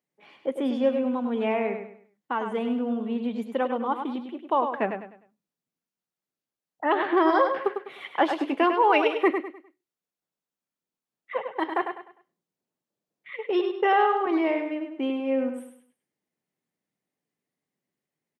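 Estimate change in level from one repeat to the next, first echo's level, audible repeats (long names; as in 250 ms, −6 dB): −10.0 dB, −7.0 dB, 3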